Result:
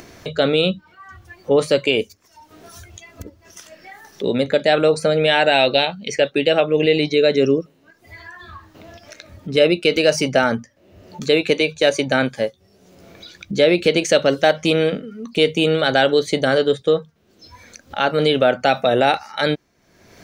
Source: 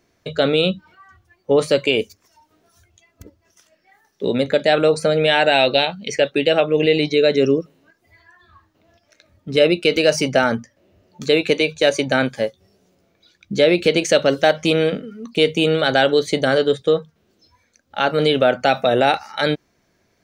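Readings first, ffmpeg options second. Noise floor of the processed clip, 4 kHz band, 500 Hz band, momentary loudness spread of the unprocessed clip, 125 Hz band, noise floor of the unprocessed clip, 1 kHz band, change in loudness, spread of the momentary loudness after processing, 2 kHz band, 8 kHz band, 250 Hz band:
-57 dBFS, 0.0 dB, 0.0 dB, 7 LU, 0.0 dB, -65 dBFS, 0.0 dB, 0.0 dB, 10 LU, 0.0 dB, 0.0 dB, 0.0 dB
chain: -af "acompressor=mode=upward:threshold=-26dB:ratio=2.5"

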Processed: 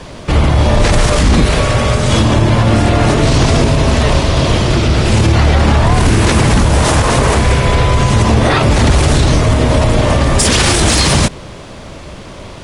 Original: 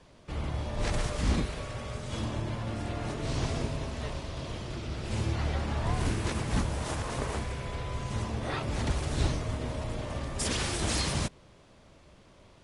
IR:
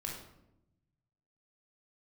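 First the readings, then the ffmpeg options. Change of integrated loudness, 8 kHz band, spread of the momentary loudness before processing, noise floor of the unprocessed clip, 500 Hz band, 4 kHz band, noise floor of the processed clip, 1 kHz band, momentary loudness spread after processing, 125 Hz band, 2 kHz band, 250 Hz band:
+21.5 dB, +20.5 dB, 8 LU, -57 dBFS, +22.5 dB, +21.0 dB, -31 dBFS, +22.5 dB, 3 LU, +21.5 dB, +22.0 dB, +21.5 dB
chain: -filter_complex "[0:a]asplit=2[a][b];[b]asoftclip=type=tanh:threshold=-32.5dB,volume=-11dB[c];[a][c]amix=inputs=2:normalize=0,alimiter=level_in=25dB:limit=-1dB:release=50:level=0:latency=1,volume=-1dB"

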